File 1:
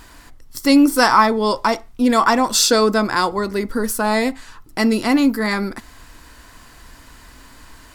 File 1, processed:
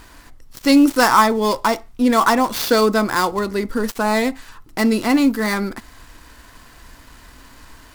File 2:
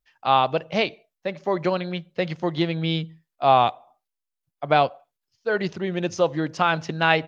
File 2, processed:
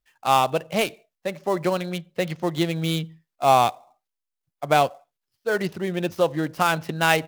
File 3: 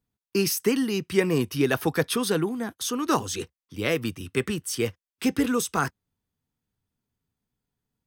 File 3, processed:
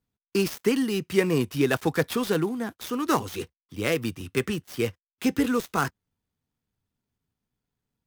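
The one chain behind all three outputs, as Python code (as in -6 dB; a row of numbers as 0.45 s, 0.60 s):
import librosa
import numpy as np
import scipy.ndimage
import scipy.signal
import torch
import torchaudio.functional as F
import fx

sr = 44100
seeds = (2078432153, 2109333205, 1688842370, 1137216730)

y = fx.dead_time(x, sr, dead_ms=0.074)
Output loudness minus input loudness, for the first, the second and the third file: -0.5 LU, 0.0 LU, -0.5 LU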